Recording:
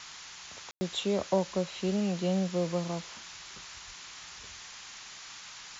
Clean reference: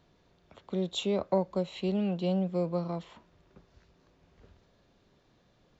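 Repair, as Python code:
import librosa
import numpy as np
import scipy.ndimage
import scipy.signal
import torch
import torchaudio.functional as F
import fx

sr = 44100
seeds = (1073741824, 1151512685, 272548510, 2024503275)

y = fx.highpass(x, sr, hz=140.0, slope=24, at=(3.86, 3.98), fade=0.02)
y = fx.fix_ambience(y, sr, seeds[0], print_start_s=4.66, print_end_s=5.16, start_s=0.71, end_s=0.81)
y = fx.noise_reduce(y, sr, print_start_s=4.66, print_end_s=5.16, reduce_db=19.0)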